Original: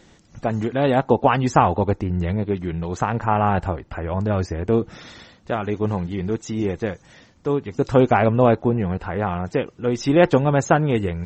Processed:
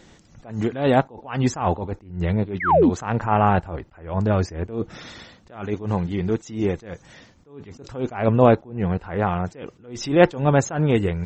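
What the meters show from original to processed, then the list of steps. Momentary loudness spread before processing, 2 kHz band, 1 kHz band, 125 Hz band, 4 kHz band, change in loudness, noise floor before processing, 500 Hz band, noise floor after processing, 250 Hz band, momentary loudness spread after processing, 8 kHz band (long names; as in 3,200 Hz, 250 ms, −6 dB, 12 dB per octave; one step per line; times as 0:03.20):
11 LU, −1.5 dB, −2.0 dB, −1.0 dB, −1.0 dB, −1.0 dB, −53 dBFS, −1.5 dB, −53 dBFS, −1.0 dB, 18 LU, can't be measured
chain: sound drawn into the spectrogram fall, 0:02.60–0:02.90, 210–2,300 Hz −16 dBFS
level that may rise only so fast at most 130 dB per second
level +1.5 dB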